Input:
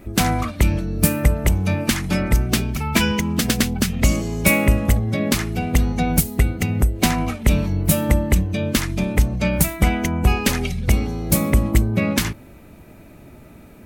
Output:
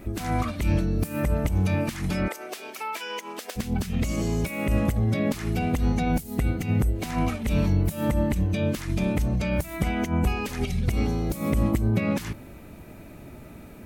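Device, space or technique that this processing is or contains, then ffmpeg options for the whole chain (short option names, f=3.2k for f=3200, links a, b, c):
de-esser from a sidechain: -filter_complex "[0:a]asplit=2[a][b];[b]highpass=f=4.1k:p=1,apad=whole_len=611106[c];[a][c]sidechaincompress=threshold=-35dB:ratio=16:attack=1.4:release=84,asettb=1/sr,asplit=3[d][e][f];[d]atrim=end=2.284[g];[e]atrim=start=2.28:end=3.56,asetpts=PTS-STARTPTS,afade=t=in:d=0.004:c=qsin,afade=t=out:st=1.276:d=0.004:c=qsin,highpass=f=430:w=0.5412,highpass=f=430:w=1.3066[h];[f]atrim=start=3.556[i];[g][h]acrossfade=d=0.004:c1=hsin:c2=qsin[j];[j][i]acrossfade=d=0.004:c1=qsin:c2=hsin"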